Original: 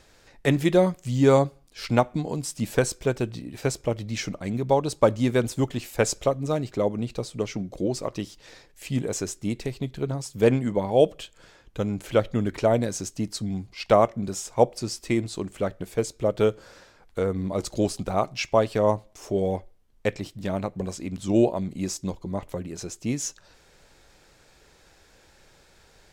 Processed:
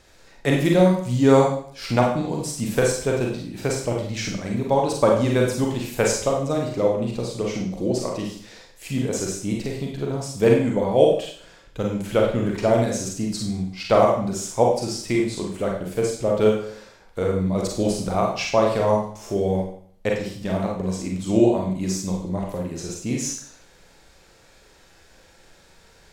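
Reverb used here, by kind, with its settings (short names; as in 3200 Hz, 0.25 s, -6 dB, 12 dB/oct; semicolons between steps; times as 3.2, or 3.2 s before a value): Schroeder reverb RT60 0.54 s, combs from 33 ms, DRR -1 dB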